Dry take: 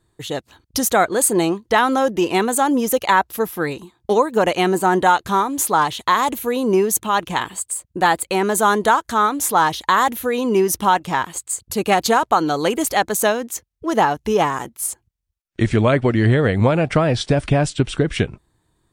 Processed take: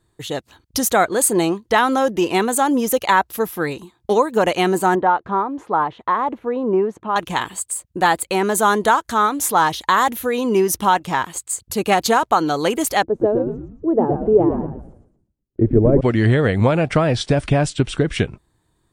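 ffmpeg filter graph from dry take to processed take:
ffmpeg -i in.wav -filter_complex "[0:a]asettb=1/sr,asplit=3[link_01][link_02][link_03];[link_01]atrim=end=4.954[link_04];[link_02]atrim=start=4.95:end=7.16,asetpts=PTS-STARTPTS,afade=type=in:duration=0.004:curve=qsin,afade=type=out:start_time=2.206:duration=0.004:curve=qsin,lowpass=1200,lowshelf=frequency=120:gain=-11.5[link_05];[link_03]atrim=start=7.156[link_06];[link_04][link_05]acrossfade=duration=0.004:curve1=hsin:curve2=qsin[link_07];[link_07][link_06]acrossfade=duration=0.004:curve1=qsin:curve2=hsin,asettb=1/sr,asplit=3[link_08][link_09][link_10];[link_08]atrim=end=13.034[link_11];[link_09]atrim=start=13.03:end=16.01,asetpts=PTS-STARTPTS,afade=type=in:duration=0.004:curve=qsin,afade=type=out:start_time=2.976:duration=0.004:curve=qsin,lowpass=frequency=440:width_type=q:width=1.8,equalizer=frequency=200:width=5.8:gain=-6,asplit=6[link_12][link_13][link_14][link_15][link_16][link_17];[link_13]adelay=115,afreqshift=-92,volume=-5dB[link_18];[link_14]adelay=230,afreqshift=-184,volume=-13dB[link_19];[link_15]adelay=345,afreqshift=-276,volume=-20.9dB[link_20];[link_16]adelay=460,afreqshift=-368,volume=-28.9dB[link_21];[link_17]adelay=575,afreqshift=-460,volume=-36.8dB[link_22];[link_12][link_18][link_19][link_20][link_21][link_22]amix=inputs=6:normalize=0,atrim=end_sample=131418[link_23];[link_10]atrim=start=16.006[link_24];[link_11][link_23]acrossfade=duration=0.004:curve1=hsin:curve2=qsin[link_25];[link_25][link_24]acrossfade=duration=0.004:curve1=qsin:curve2=hsin" out.wav

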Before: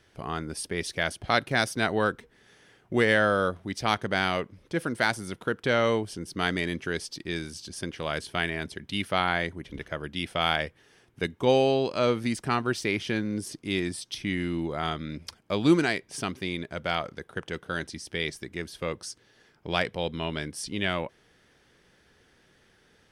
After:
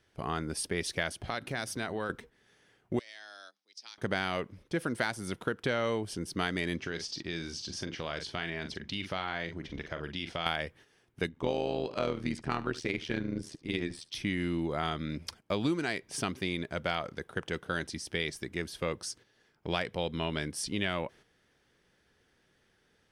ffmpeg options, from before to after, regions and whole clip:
ffmpeg -i in.wav -filter_complex "[0:a]asettb=1/sr,asplit=3[link_01][link_02][link_03];[link_01]atrim=end=1.234[link_04];[link_02]atrim=start=1.23:end=2.1,asetpts=PTS-STARTPTS,afade=type=in:duration=0.004:curve=qsin,afade=type=out:start_time=0.866:duration=0.004:curve=qsin,bandreject=frequency=50:width_type=h:width=6,bandreject=frequency=100:width_type=h:width=6,bandreject=frequency=150:width_type=h:width=6,bandreject=frequency=200:width_type=h:width=6,bandreject=frequency=250:width_type=h:width=6,bandreject=frequency=300:width_type=h:width=6,acompressor=threshold=-33dB:ratio=3:attack=3.2:release=140:knee=1:detection=peak[link_05];[link_03]atrim=start=2.096[link_06];[link_04][link_05]acrossfade=duration=0.004:curve1=hsin:curve2=qsin[link_07];[link_07][link_06]acrossfade=duration=0.004:curve1=qsin:curve2=hsin,asettb=1/sr,asplit=3[link_08][link_09][link_10];[link_08]atrim=end=2.994[link_11];[link_09]atrim=start=2.99:end=3.98,asetpts=PTS-STARTPTS,afade=type=in:duration=0.004:curve=qsin,afade=type=out:start_time=0.986:duration=0.004:curve=qsin,afreqshift=110,bandpass=frequency=5100:width_type=q:width=4.2,acompressor=threshold=-43dB:ratio=4:attack=3.2:release=140:knee=1:detection=peak[link_12];[link_10]atrim=start=3.976[link_13];[link_11][link_12]acrossfade=duration=0.004:curve1=hsin:curve2=qsin[link_14];[link_14][link_13]acrossfade=duration=0.004:curve1=qsin:curve2=hsin,asettb=1/sr,asplit=3[link_15][link_16][link_17];[link_15]atrim=end=6.784[link_18];[link_16]atrim=start=6.78:end=10.46,asetpts=PTS-STARTPTS,afade=type=in:duration=0.004:curve=qsin,afade=type=out:start_time=3.676:duration=0.004:curve=qsin,highshelf=frequency=7700:width_type=q:width=1.5:gain=-11.5,asplit=2[link_19][link_20];[link_20]adelay=42,volume=-10dB[link_21];[link_19][link_21]amix=inputs=2:normalize=0,atrim=end_sample=162288,acompressor=threshold=-34dB:ratio=2.5:attack=3.2:release=140:knee=1:detection=peak[link_22];[link_17]atrim=start=10.456[link_23];[link_18][link_22]acrossfade=duration=0.004:curve1=hsin:curve2=qsin[link_24];[link_24][link_23]acrossfade=duration=0.004:curve1=qsin:curve2=hsin,asettb=1/sr,asplit=3[link_25][link_26][link_27];[link_25]atrim=end=11.294[link_28];[link_26]atrim=start=11.29:end=14.15,asetpts=PTS-STARTPTS,afade=type=in:duration=0.004:curve=qsin,afade=type=out:start_time=2.856:duration=0.004:curve=qsin,adynamicsmooth=sensitivity=2:basefreq=6100,tremolo=f=79:d=0.824,aecho=1:1:73:0.119,atrim=end_sample=126126[link_29];[link_27]atrim=start=14.146[link_30];[link_28][link_29]acrossfade=duration=0.004:curve1=hsin:curve2=qsin[link_31];[link_31][link_30]acrossfade=duration=0.004:curve1=qsin:curve2=hsin,agate=range=-8dB:threshold=-51dB:ratio=16:detection=peak,acompressor=threshold=-27dB:ratio=6" out.wav

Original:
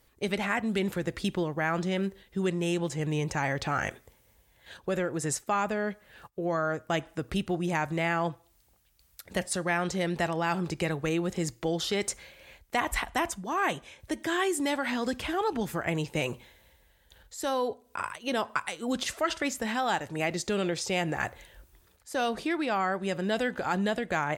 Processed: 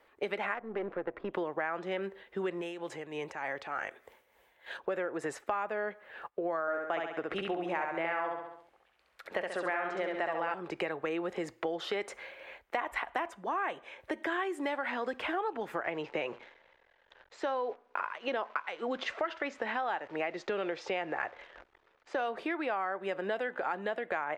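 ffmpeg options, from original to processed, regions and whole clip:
ffmpeg -i in.wav -filter_complex "[0:a]asettb=1/sr,asplit=3[link_01][link_02][link_03];[link_01]atrim=end=0.544[link_04];[link_02]atrim=start=0.54:end=1.34,asetpts=PTS-STARTPTS,afade=type=in:duration=0.004:curve=qsin,afade=type=out:start_time=0.796:duration=0.004:curve=qsin,aeval=exprs='if(lt(val(0),0),0.251*val(0),val(0))':channel_layout=same,bandreject=frequency=900:width=15,adynamicsmooth=sensitivity=1:basefreq=1200[link_05];[link_03]atrim=start=1.336[link_06];[link_04][link_05]acrossfade=duration=0.004:curve1=hsin:curve2=qsin[link_07];[link_07][link_06]acrossfade=duration=0.004:curve1=qsin:curve2=hsin,asettb=1/sr,asplit=3[link_08][link_09][link_10];[link_08]atrim=end=2.614[link_11];[link_09]atrim=start=2.61:end=4.8,asetpts=PTS-STARTPTS,afade=type=in:duration=0.004:curve=qsin,afade=type=out:start_time=2.186:duration=0.004:curve=qsin,highshelf=frequency=3700:gain=8,acompressor=threshold=-39dB:ratio=2:attack=3.2:release=140:knee=1:detection=peak,tremolo=f=3.3:d=0.59[link_12];[link_10]atrim=start=4.796[link_13];[link_11][link_12]acrossfade=duration=0.004:curve1=hsin:curve2=qsin[link_14];[link_14][link_13]acrossfade=duration=0.004:curve1=qsin:curve2=hsin,asettb=1/sr,asplit=3[link_15][link_16][link_17];[link_15]atrim=end=6.614[link_18];[link_16]atrim=start=6.61:end=10.54,asetpts=PTS-STARTPTS,afade=type=in:duration=0.004:curve=qsin,afade=type=out:start_time=3.926:duration=0.004:curve=qsin,lowpass=11000,bass=frequency=250:gain=-4,treble=frequency=4000:gain=-4,aecho=1:1:67|134|201|268|335|402:0.708|0.304|0.131|0.0563|0.0242|0.0104,atrim=end_sample=173313[link_19];[link_17]atrim=start=10.536[link_20];[link_18][link_19]acrossfade=duration=0.004:curve1=hsin:curve2=qsin[link_21];[link_21][link_20]acrossfade=duration=0.004:curve1=qsin:curve2=hsin,asettb=1/sr,asplit=3[link_22][link_23][link_24];[link_22]atrim=end=15.844[link_25];[link_23]atrim=start=15.84:end=22.18,asetpts=PTS-STARTPTS,afade=type=in:duration=0.004:curve=qsin,afade=type=out:start_time=6.336:duration=0.004:curve=qsin,acrusher=bits=9:dc=4:mix=0:aa=0.000001,lowpass=frequency=6400:width=0.5412,lowpass=frequency=6400:width=1.3066[link_26];[link_24]atrim=start=22.176[link_27];[link_25][link_26]acrossfade=duration=0.004:curve1=hsin:curve2=qsin[link_28];[link_28][link_27]acrossfade=duration=0.004:curve1=qsin:curve2=hsin,acrossover=split=340 2700:gain=0.0708 1 0.0794[link_29][link_30][link_31];[link_29][link_30][link_31]amix=inputs=3:normalize=0,acompressor=threshold=-39dB:ratio=4,volume=7dB" out.wav

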